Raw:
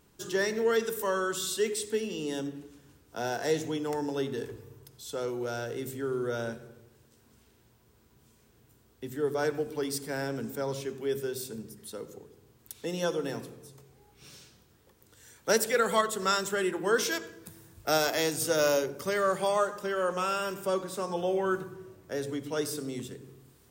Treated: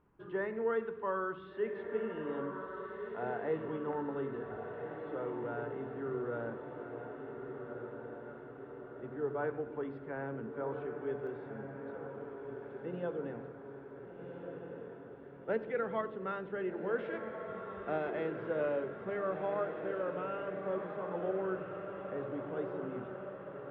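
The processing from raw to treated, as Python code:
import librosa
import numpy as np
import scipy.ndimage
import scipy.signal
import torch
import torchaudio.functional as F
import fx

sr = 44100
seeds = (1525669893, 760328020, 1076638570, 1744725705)

y = scipy.signal.sosfilt(scipy.signal.bessel(8, 1500.0, 'lowpass', norm='mag', fs=sr, output='sos'), x)
y = fx.peak_eq(y, sr, hz=1100.0, db=fx.steps((0.0, 5.5), (11.27, -3.5)), octaves=0.92)
y = fx.echo_diffused(y, sr, ms=1519, feedback_pct=61, wet_db=-6)
y = F.gain(torch.from_numpy(y), -7.0).numpy()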